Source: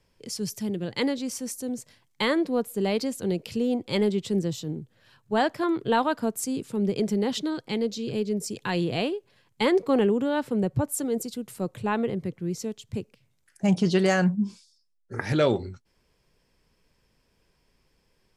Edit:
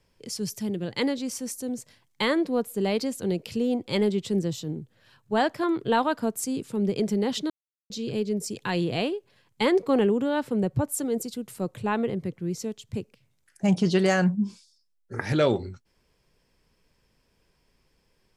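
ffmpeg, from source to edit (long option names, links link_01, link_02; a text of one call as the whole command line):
ffmpeg -i in.wav -filter_complex "[0:a]asplit=3[link_01][link_02][link_03];[link_01]atrim=end=7.5,asetpts=PTS-STARTPTS,afade=type=out:start_time=7.496:duration=0.004:curve=hsin[link_04];[link_02]atrim=start=7.5:end=7.9,asetpts=PTS-STARTPTS,volume=0[link_05];[link_03]atrim=start=7.9,asetpts=PTS-STARTPTS,afade=type=in:duration=0.004:curve=hsin[link_06];[link_04][link_05][link_06]concat=n=3:v=0:a=1" out.wav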